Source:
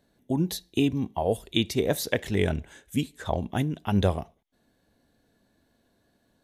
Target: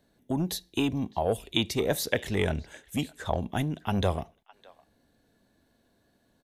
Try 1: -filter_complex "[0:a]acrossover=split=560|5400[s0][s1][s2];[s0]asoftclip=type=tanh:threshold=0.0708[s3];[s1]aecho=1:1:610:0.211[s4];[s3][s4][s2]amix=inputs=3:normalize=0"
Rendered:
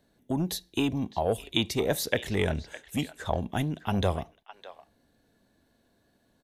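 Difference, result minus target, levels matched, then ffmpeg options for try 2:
echo-to-direct +8 dB
-filter_complex "[0:a]acrossover=split=560|5400[s0][s1][s2];[s0]asoftclip=type=tanh:threshold=0.0708[s3];[s1]aecho=1:1:610:0.0841[s4];[s3][s4][s2]amix=inputs=3:normalize=0"

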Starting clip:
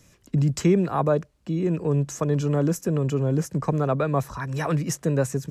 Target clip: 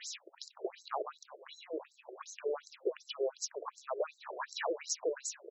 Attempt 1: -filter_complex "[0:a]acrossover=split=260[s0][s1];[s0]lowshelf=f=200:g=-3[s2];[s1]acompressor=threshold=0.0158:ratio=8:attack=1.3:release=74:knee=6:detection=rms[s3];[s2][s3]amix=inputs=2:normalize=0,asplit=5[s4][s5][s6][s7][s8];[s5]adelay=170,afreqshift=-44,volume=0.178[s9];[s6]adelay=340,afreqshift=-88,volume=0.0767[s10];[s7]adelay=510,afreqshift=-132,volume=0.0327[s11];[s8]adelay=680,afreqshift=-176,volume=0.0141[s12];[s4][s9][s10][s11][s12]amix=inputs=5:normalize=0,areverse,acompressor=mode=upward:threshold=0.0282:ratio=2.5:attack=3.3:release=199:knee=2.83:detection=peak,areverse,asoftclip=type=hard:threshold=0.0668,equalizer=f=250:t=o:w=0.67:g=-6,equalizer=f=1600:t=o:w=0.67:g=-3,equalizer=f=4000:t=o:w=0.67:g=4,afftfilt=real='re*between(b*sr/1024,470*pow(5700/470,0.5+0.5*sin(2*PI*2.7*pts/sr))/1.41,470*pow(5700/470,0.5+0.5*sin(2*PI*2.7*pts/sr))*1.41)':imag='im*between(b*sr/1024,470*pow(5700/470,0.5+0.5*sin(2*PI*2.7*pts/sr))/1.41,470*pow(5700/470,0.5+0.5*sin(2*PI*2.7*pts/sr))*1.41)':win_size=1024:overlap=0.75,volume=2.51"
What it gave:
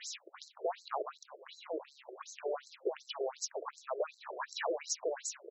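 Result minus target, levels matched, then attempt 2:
hard clipper: distortion +22 dB
-filter_complex "[0:a]acrossover=split=260[s0][s1];[s0]lowshelf=f=200:g=-3[s2];[s1]acompressor=threshold=0.0158:ratio=8:attack=1.3:release=74:knee=6:detection=rms[s3];[s2][s3]amix=inputs=2:normalize=0,asplit=5[s4][s5][s6][s7][s8];[s5]adelay=170,afreqshift=-44,volume=0.178[s9];[s6]adelay=340,afreqshift=-88,volume=0.0767[s10];[s7]adelay=510,afreqshift=-132,volume=0.0327[s11];[s8]adelay=680,afreqshift=-176,volume=0.0141[s12];[s4][s9][s10][s11][s12]amix=inputs=5:normalize=0,areverse,acompressor=mode=upward:threshold=0.0282:ratio=2.5:attack=3.3:release=199:knee=2.83:detection=peak,areverse,asoftclip=type=hard:threshold=0.15,equalizer=f=250:t=o:w=0.67:g=-6,equalizer=f=1600:t=o:w=0.67:g=-3,equalizer=f=4000:t=o:w=0.67:g=4,afftfilt=real='re*between(b*sr/1024,470*pow(5700/470,0.5+0.5*sin(2*PI*2.7*pts/sr))/1.41,470*pow(5700/470,0.5+0.5*sin(2*PI*2.7*pts/sr))*1.41)':imag='im*between(b*sr/1024,470*pow(5700/470,0.5+0.5*sin(2*PI*2.7*pts/sr))/1.41,470*pow(5700/470,0.5+0.5*sin(2*PI*2.7*pts/sr))*1.41)':win_size=1024:overlap=0.75,volume=2.51"

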